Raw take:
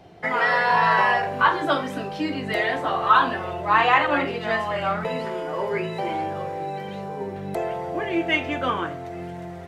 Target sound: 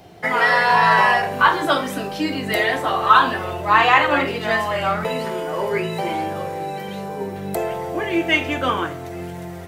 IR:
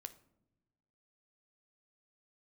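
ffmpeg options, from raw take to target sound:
-filter_complex "[0:a]asplit=2[link_01][link_02];[link_02]aemphasis=mode=production:type=75fm[link_03];[1:a]atrim=start_sample=2205[link_04];[link_03][link_04]afir=irnorm=-1:irlink=0,volume=8.5dB[link_05];[link_01][link_05]amix=inputs=2:normalize=0,volume=-4dB"

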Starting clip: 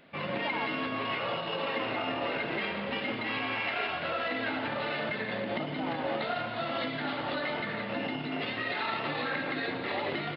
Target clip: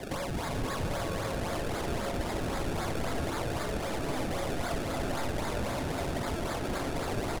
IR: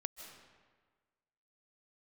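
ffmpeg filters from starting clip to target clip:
-filter_complex "[0:a]highshelf=frequency=3400:gain=3.5,asplit=2[link_01][link_02];[link_02]highpass=frequency=720:poles=1,volume=29dB,asoftclip=type=tanh:threshold=-18dB[link_03];[link_01][link_03]amix=inputs=2:normalize=0,lowpass=frequency=1400:poles=1,volume=-6dB,alimiter=level_in=0.5dB:limit=-24dB:level=0:latency=1:release=17,volume=-0.5dB,atempo=1.4,acrusher=samples=30:mix=1:aa=0.000001:lfo=1:lforange=30:lforate=3.8,acrossover=split=120[link_04][link_05];[link_05]acompressor=threshold=-34dB:ratio=5[link_06];[link_04][link_06]amix=inputs=2:normalize=0[link_07];[1:a]atrim=start_sample=2205,asetrate=23373,aresample=44100[link_08];[link_07][link_08]afir=irnorm=-1:irlink=0,volume=1dB"

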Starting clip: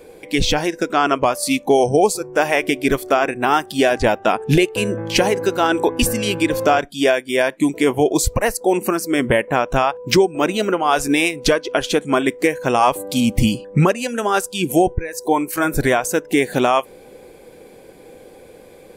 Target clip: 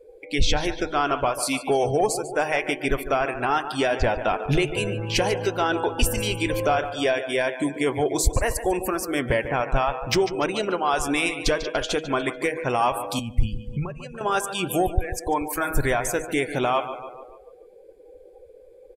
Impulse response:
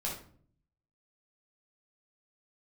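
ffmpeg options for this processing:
-filter_complex "[0:a]asplit=2[link_01][link_02];[link_02]alimiter=limit=-13.5dB:level=0:latency=1:release=386,volume=-1dB[link_03];[link_01][link_03]amix=inputs=2:normalize=0,equalizer=frequency=210:width_type=o:width=1.8:gain=-10.5,bandreject=frequency=158.6:width_type=h:width=4,bandreject=frequency=317.2:width_type=h:width=4,bandreject=frequency=475.8:width_type=h:width=4,bandreject=frequency=634.4:width_type=h:width=4,bandreject=frequency=793:width_type=h:width=4,bandreject=frequency=951.6:width_type=h:width=4,bandreject=frequency=1110.2:width_type=h:width=4,bandreject=frequency=1268.8:width_type=h:width=4,bandreject=frequency=1427.4:width_type=h:width=4,bandreject=frequency=1586:width_type=h:width=4,bandreject=frequency=1744.6:width_type=h:width=4,bandreject=frequency=1903.2:width_type=h:width=4,bandreject=frequency=2061.8:width_type=h:width=4,bandreject=frequency=2220.4:width_type=h:width=4,bandreject=frequency=2379:width_type=h:width=4,bandreject=frequency=2537.6:width_type=h:width=4,bandreject=frequency=2696.2:width_type=h:width=4,bandreject=frequency=2854.8:width_type=h:width=4,bandreject=frequency=3013.4:width_type=h:width=4,bandreject=frequency=3172:width_type=h:width=4,bandreject=frequency=3330.6:width_type=h:width=4,bandreject=frequency=3489.2:width_type=h:width=4,asplit=2[link_04][link_05];[link_05]aecho=0:1:145|290|435|580|725|870:0.251|0.146|0.0845|0.049|0.0284|0.0165[link_06];[link_04][link_06]amix=inputs=2:normalize=0,asoftclip=type=tanh:threshold=-5dB,asettb=1/sr,asplit=3[link_07][link_08][link_09];[link_07]atrim=end=13.194[link_10];[link_08]atrim=start=13.19:end=14.21,asetpts=PTS-STARTPTS,afade=type=in:duration=0.004:curve=qsin,afade=type=out:start_time=1.016:duration=0.004:curve=qsin,acrossover=split=120[link_11][link_12];[link_12]acompressor=threshold=-33dB:ratio=2.5[link_13];[link_11][link_13]amix=inputs=2:normalize=0[link_14];[link_09]atrim=start=14.206[link_15];[link_10][link_14]acrossfade=duration=0.004:curve1=hsin:curve2=qsin[link_16];[link_16][link_15]acrossfade=duration=0.004:curve1=qsin:curve2=hsin,afftdn=noise_reduction=21:noise_floor=-33,lowshelf=frequency=280:gain=8,volume=-7dB"

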